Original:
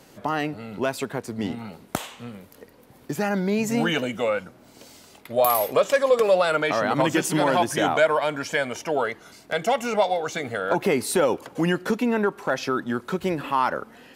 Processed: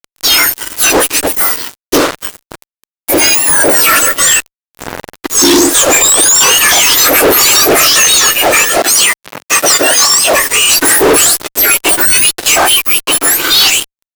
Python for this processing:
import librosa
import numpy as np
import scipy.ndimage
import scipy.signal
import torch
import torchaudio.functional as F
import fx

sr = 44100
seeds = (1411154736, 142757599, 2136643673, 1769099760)

y = fx.octave_mirror(x, sr, pivot_hz=2000.0)
y = fx.fuzz(y, sr, gain_db=42.0, gate_db=-40.0)
y = fx.highpass(y, sr, hz=120.0, slope=12, at=(8.77, 10.34))
y = F.gain(torch.from_numpy(y), 8.0).numpy()